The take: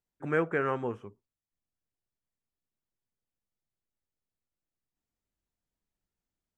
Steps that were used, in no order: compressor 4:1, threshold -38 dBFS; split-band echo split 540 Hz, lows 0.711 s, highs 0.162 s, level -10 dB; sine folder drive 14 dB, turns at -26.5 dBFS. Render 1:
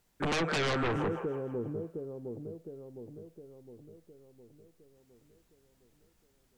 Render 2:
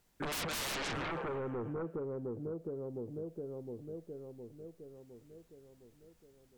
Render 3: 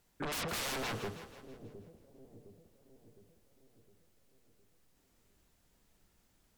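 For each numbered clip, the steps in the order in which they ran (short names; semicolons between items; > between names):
compressor > split-band echo > sine folder; split-band echo > sine folder > compressor; sine folder > compressor > split-band echo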